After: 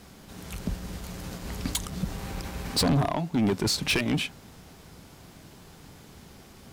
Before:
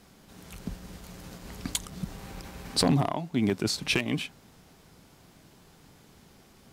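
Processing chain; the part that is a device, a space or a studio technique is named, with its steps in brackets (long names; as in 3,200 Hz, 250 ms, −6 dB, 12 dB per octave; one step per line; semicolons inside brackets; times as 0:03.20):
open-reel tape (soft clipping −25.5 dBFS, distortion −8 dB; parametric band 69 Hz +4 dB 1.15 octaves; white noise bed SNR 48 dB)
level +6 dB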